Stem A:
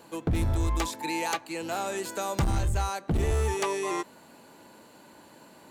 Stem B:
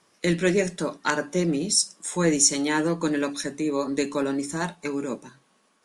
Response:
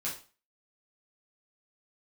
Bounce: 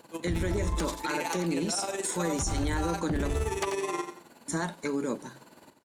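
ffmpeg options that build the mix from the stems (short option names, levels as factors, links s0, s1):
-filter_complex "[0:a]tremolo=f=19:d=0.76,volume=1.12,asplit=2[s0][s1];[s1]volume=0.355[s2];[1:a]bandreject=f=2600:w=6.2,agate=range=0.224:threshold=0.00141:ratio=16:detection=peak,acompressor=threshold=0.0398:ratio=6,volume=1.26,asplit=3[s3][s4][s5];[s3]atrim=end=3.36,asetpts=PTS-STARTPTS,afade=t=out:st=3.356:d=0.004:c=hsin[s6];[s4]atrim=start=3.36:end=4.48,asetpts=PTS-STARTPTS,volume=0[s7];[s5]atrim=start=4.48,asetpts=PTS-STARTPTS,afade=t=in:d=0.004:c=hsin[s8];[s6][s7][s8]concat=n=3:v=0:a=1[s9];[s2]aecho=0:1:89|178|267|356|445:1|0.33|0.109|0.0359|0.0119[s10];[s0][s9][s10]amix=inputs=3:normalize=0,alimiter=limit=0.0891:level=0:latency=1:release=15"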